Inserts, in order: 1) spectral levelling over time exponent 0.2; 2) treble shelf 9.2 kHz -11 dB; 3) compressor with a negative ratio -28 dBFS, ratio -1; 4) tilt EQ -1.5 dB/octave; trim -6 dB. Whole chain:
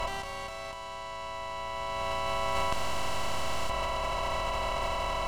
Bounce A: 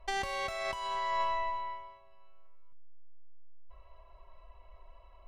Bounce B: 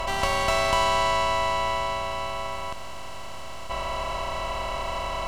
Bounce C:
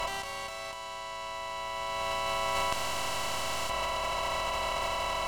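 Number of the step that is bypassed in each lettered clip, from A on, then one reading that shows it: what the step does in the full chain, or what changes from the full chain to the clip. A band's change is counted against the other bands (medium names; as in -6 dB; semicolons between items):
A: 1, 1 kHz band +4.0 dB; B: 3, momentary loudness spread change +9 LU; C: 4, 125 Hz band -6.0 dB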